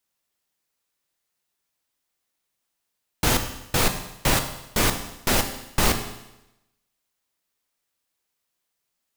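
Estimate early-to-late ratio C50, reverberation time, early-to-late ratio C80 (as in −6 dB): 9.0 dB, 0.90 s, 11.5 dB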